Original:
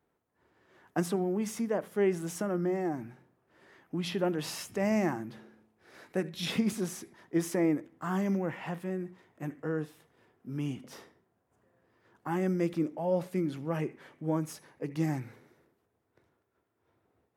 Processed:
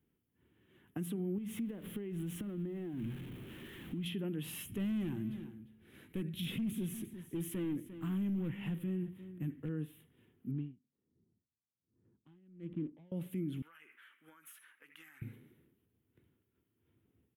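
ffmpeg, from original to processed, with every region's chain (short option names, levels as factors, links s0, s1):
-filter_complex "[0:a]asettb=1/sr,asplit=3[s0][s1][s2];[s0]atrim=end=1.384[s3];[s1]atrim=start=1.38:end=4.06,asetpts=PTS-STARTPTS,afade=t=in:d=0.004:c=qsin,afade=t=out:st=2.676:d=0.004:c=qsin,aeval=exprs='val(0)+0.5*0.00944*sgn(val(0))':c=same,highshelf=f=6000:g=-10.5,acompressor=threshold=0.0158:ratio=10:attack=3.2:release=140:knee=1:detection=peak[s4];[s2]atrim=start=4.056[s5];[s3][s4]acrossfade=d=0.004:c1=hsin:c2=qsin[s6];[s6][s5]acrossfade=d=0.004:c1=qsin:c2=hsin,asettb=1/sr,asplit=3[s7][s8][s9];[s7]atrim=end=4.654[s10];[s8]atrim=start=4.65:end=9.69,asetpts=PTS-STARTPTS,afade=t=in:d=0.004:c=qsin,afade=t=out:st=5.036:d=0.004:c=qsin,lowshelf=f=91:g=10,volume=22.4,asoftclip=hard,volume=0.0447,aecho=1:1:350:0.141,atrim=end_sample=222264[s11];[s9]atrim=start=9.686[s12];[s10][s11]acrossfade=d=0.004:c1=hsin:c2=qsin[s13];[s13][s12]acrossfade=d=0.004:c1=qsin:c2=hsin,asettb=1/sr,asplit=3[s14][s15][s16];[s14]atrim=end=10.514[s17];[s15]atrim=start=10.51:end=13.12,asetpts=PTS-STARTPTS,afade=t=in:d=0.004:c=qsin,afade=t=out:st=2.606:d=0.004:c=qsin,adynamicsmooth=sensitivity=6.5:basefreq=600,aeval=exprs='val(0)*pow(10,-36*(0.5-0.5*cos(2*PI*1.3*n/s))/20)':c=same[s18];[s16]atrim=start=13.116[s19];[s17][s18]acrossfade=d=0.004:c1=hsin:c2=qsin[s20];[s20][s19]acrossfade=d=0.004:c1=qsin:c2=hsin,asettb=1/sr,asplit=3[s21][s22][s23];[s21]atrim=end=13.624[s24];[s22]atrim=start=13.62:end=15.22,asetpts=PTS-STARTPTS,afade=t=in:d=0.004:c=qsin,afade=t=out:st=1.596:d=0.004:c=qsin,highpass=f=1400:t=q:w=4.8,acompressor=threshold=0.00447:ratio=8:attack=3.2:release=140:knee=1:detection=peak[s25];[s23]atrim=start=15.216[s26];[s24][s25]acrossfade=d=0.004:c1=hsin:c2=qsin[s27];[s27][s26]acrossfade=d=0.004:c1=qsin:c2=hsin,firequalizer=gain_entry='entry(240,0);entry(630,-20);entry(3100,-1);entry(4700,-24);entry(11000,0)':delay=0.05:min_phase=1,alimiter=level_in=2.99:limit=0.0631:level=0:latency=1:release=168,volume=0.335,volume=1.41"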